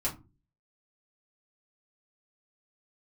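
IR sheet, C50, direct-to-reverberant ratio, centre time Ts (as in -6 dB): 13.5 dB, -6.5 dB, 16 ms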